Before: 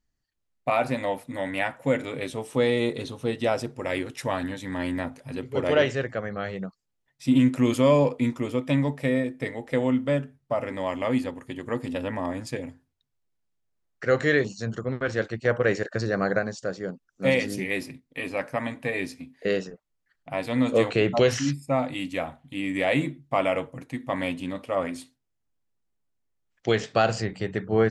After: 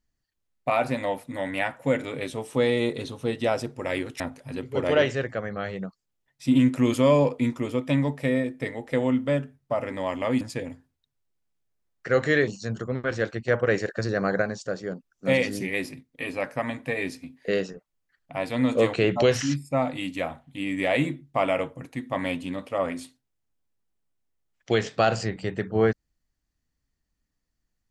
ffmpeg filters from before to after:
-filter_complex "[0:a]asplit=3[a][b][c];[a]atrim=end=4.202[d];[b]atrim=start=4.998:end=11.212[e];[c]atrim=start=12.378[f];[d][e]acrossfade=d=0.004:c1=hsin:c2=hsin[g];[g][f]acrossfade=d=0.004:c1=hsin:c2=hsin"

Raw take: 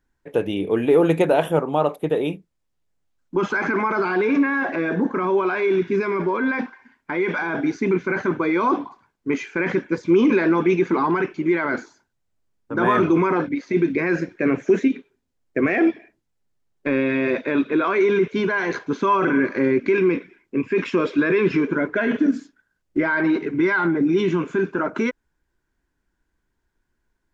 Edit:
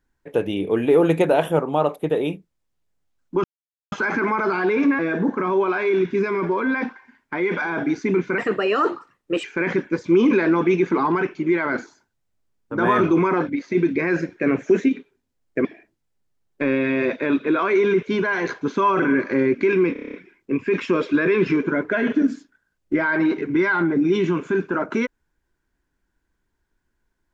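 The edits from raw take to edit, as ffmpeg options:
-filter_complex "[0:a]asplit=13[a][b][c][d][e][f][g][h][i][j][k][l][m];[a]atrim=end=3.44,asetpts=PTS-STARTPTS,afade=t=out:st=3.436:d=0.004:c=hsin,apad=pad_dur=0.48[n];[b]atrim=start=3.44:end=4.512,asetpts=PTS-STARTPTS,afade=t=in:d=0.004:c=hsin[o];[c]atrim=start=4.758:end=8.154[p];[d]atrim=start=8.15:end=9.43,asetpts=PTS-STARTPTS,asetrate=53361,aresample=44100,atrim=end_sample=46651,asetpts=PTS-STARTPTS[q];[e]atrim=start=9.426:end=15.642[r];[f]atrim=start=15.898:end=20.212[s];[g]atrim=start=20.178:end=20.212[t];[h]atrim=start=20.178:end=20.212[u];[i]atrim=start=20.178:end=20.212[v];[j]atrim=start=20.178:end=20.212[w];[k]atrim=start=20.178:end=20.212[x];[l]atrim=start=20.178:end=20.212[y];[m]atrim=start=20.178[z];[n][o]concat=n=2:v=0:a=1[aa];[aa][p]acrossfade=d=0.004:c1=hsin:c2=hsin[ab];[ab][q]acrossfade=d=0.004:c1=hsin:c2=hsin[ac];[ac][r]acrossfade=d=0.004:c1=hsin:c2=hsin[ad];[ad][s]acrossfade=d=0.004:c1=hsin:c2=hsin[ae];[ae][t]acrossfade=d=0.004:c1=hsin:c2=hsin[af];[af][u]acrossfade=d=0.004:c1=hsin:c2=hsin[ag];[ag][v]acrossfade=d=0.004:c1=hsin:c2=hsin[ah];[ah][w]acrossfade=d=0.004:c1=hsin:c2=hsin[ai];[ai][x]acrossfade=d=0.004:c1=hsin:c2=hsin[aj];[aj][y]acrossfade=d=0.004:c1=hsin:c2=hsin[ak];[ak][z]acrossfade=d=0.004:c1=hsin:c2=hsin"

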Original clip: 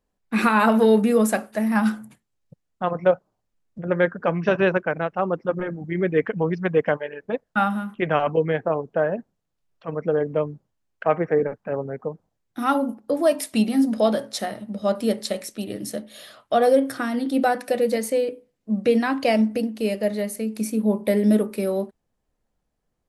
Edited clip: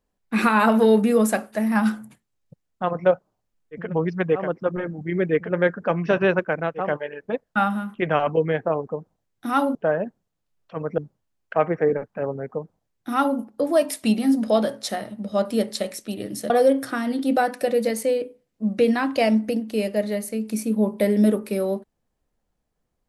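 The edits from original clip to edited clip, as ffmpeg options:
-filter_complex "[0:a]asplit=9[a][b][c][d][e][f][g][h][i];[a]atrim=end=3.95[j];[b]atrim=start=6.16:end=6.98[k];[c]atrim=start=5.12:end=6.4[l];[d]atrim=start=3.71:end=5.36[m];[e]atrim=start=6.74:end=8.872[n];[f]atrim=start=11.998:end=12.882[o];[g]atrim=start=8.868:end=10.102[p];[h]atrim=start=10.478:end=16.002[q];[i]atrim=start=16.568[r];[j][k]acrossfade=d=0.24:c1=tri:c2=tri[s];[s][l]acrossfade=d=0.24:c1=tri:c2=tri[t];[t][m]acrossfade=d=0.24:c1=tri:c2=tri[u];[u][n]acrossfade=d=0.24:c1=tri:c2=tri[v];[v][o]acrossfade=d=0.004:c1=hsin:c2=hsin[w];[w][p]acrossfade=d=0.004:c1=hsin:c2=hsin[x];[x][q]acrossfade=d=0.004:c1=hsin:c2=hsin[y];[y][r]acrossfade=d=0.004:c1=hsin:c2=hsin"

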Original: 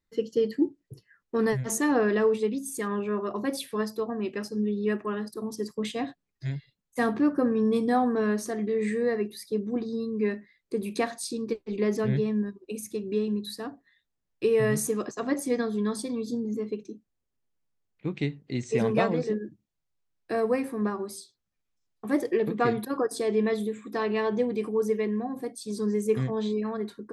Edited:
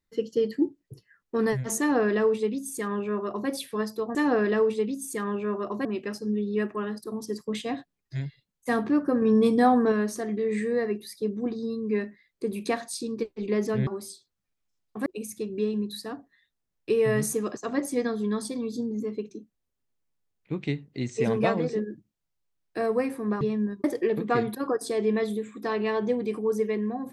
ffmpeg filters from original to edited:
-filter_complex "[0:a]asplit=9[a][b][c][d][e][f][g][h][i];[a]atrim=end=4.152[j];[b]atrim=start=1.788:end=3.492[k];[c]atrim=start=4.148:end=7.522[l];[d]atrim=start=7.518:end=8.222,asetpts=PTS-STARTPTS,volume=4dB[m];[e]atrim=start=8.218:end=12.172[n];[f]atrim=start=20.948:end=22.142[o];[g]atrim=start=12.598:end=20.952[p];[h]atrim=start=12.168:end=12.602[q];[i]atrim=start=22.138[r];[j][k]acrossfade=d=0.004:c1=hsin:c2=hsin[s];[s][l]acrossfade=d=0.004:c1=hsin:c2=hsin[t];[t][m]acrossfade=d=0.004:c1=hsin:c2=hsin[u];[u][n]acrossfade=d=0.004:c1=hsin:c2=hsin[v];[v][o]acrossfade=d=0.004:c1=hsin:c2=hsin[w];[w][p]acrossfade=d=0.004:c1=hsin:c2=hsin[x];[x][q]acrossfade=d=0.004:c1=hsin:c2=hsin[y];[y][r]acrossfade=d=0.004:c1=hsin:c2=hsin"

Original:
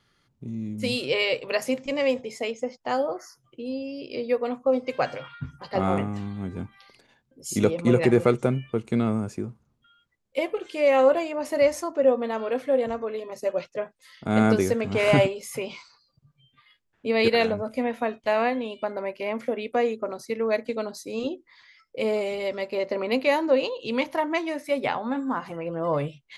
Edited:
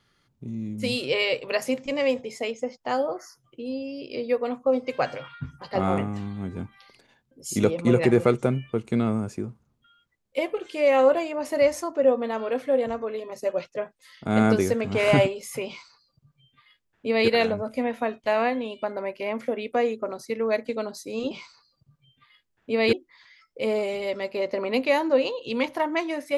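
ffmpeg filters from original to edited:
-filter_complex "[0:a]asplit=3[a][b][c];[a]atrim=end=21.312[d];[b]atrim=start=15.668:end=17.292[e];[c]atrim=start=21.308[f];[d][e]acrossfade=d=0.004:c1=hsin:c2=hsin[g];[g][f]acrossfade=d=0.004:c1=hsin:c2=hsin"

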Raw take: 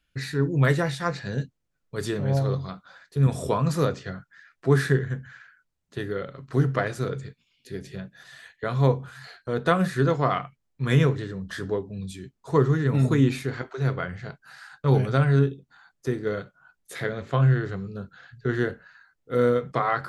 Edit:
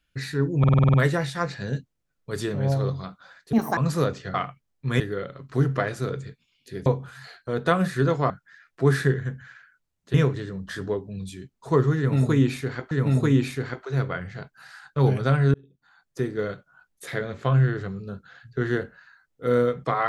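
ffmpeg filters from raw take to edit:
-filter_complex "[0:a]asplit=17[a][b][c][d][e][f][g][h][i][j][k][l][m][n][o][p][q];[a]atrim=end=0.642[r];[b]atrim=start=0.588:end=0.642[s];[c]atrim=start=0.588:end=0.642[t];[d]atrim=start=0.588:end=0.642[u];[e]atrim=start=0.588:end=0.642[v];[f]atrim=start=0.588:end=0.642[w];[g]atrim=start=0.588:end=0.642[x];[h]atrim=start=0.588:end=3.184[y];[i]atrim=start=3.18:end=3.58,asetpts=PTS-STARTPTS,asetrate=73206,aresample=44100[z];[j]atrim=start=3.576:end=4.152[aa];[k]atrim=start=10.298:end=10.962[ab];[l]atrim=start=5.988:end=7.852[ac];[m]atrim=start=8.858:end=10.302[ad];[n]atrim=start=4.148:end=5.992[ae];[o]atrim=start=10.958:end=13.732[af];[p]atrim=start=12.788:end=15.42,asetpts=PTS-STARTPTS,afade=t=out:st=2.628:d=0.004:c=hsin[ag];[q]atrim=start=15.42,asetpts=PTS-STARTPTS,afade=t=in:d=0.66[ah];[r][s]acrossfade=d=0.004:c1=hsin:c2=hsin[ai];[ai][t]acrossfade=d=0.004:c1=hsin:c2=hsin[aj];[aj][u]acrossfade=d=0.004:c1=hsin:c2=hsin[ak];[ak][v]acrossfade=d=0.004:c1=hsin:c2=hsin[al];[al][w]acrossfade=d=0.004:c1=hsin:c2=hsin[am];[am][x]acrossfade=d=0.004:c1=hsin:c2=hsin[an];[an][y]acrossfade=d=0.004:c1=hsin:c2=hsin[ao];[ao][z]acrossfade=d=0.004:c1=hsin:c2=hsin[ap];[ap][aa]acrossfade=d=0.004:c1=hsin:c2=hsin[aq];[aq][ab]acrossfade=d=0.004:c1=hsin:c2=hsin[ar];[ar][ac]acrossfade=d=0.004:c1=hsin:c2=hsin[as];[as][ad]acrossfade=d=0.004:c1=hsin:c2=hsin[at];[at][ae]acrossfade=d=0.004:c1=hsin:c2=hsin[au];[au][af]acrossfade=d=0.004:c1=hsin:c2=hsin[av];[ag][ah]concat=n=2:v=0:a=1[aw];[av][aw]acrossfade=d=0.004:c1=hsin:c2=hsin"

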